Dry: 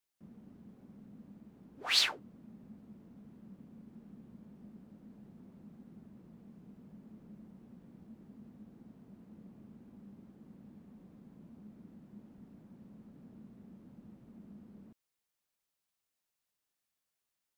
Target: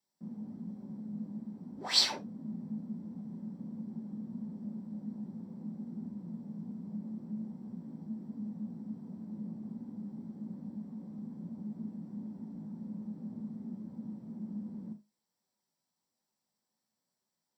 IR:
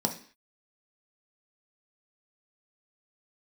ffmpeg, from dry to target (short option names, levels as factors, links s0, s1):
-filter_complex "[0:a]acrossover=split=2100[s0][s1];[s0]asoftclip=type=hard:threshold=0.01[s2];[s2][s1]amix=inputs=2:normalize=0,flanger=delay=9.6:depth=9.9:regen=58:speed=1.3:shape=sinusoidal[s3];[1:a]atrim=start_sample=2205,atrim=end_sample=3969[s4];[s3][s4]afir=irnorm=-1:irlink=0,volume=0.891"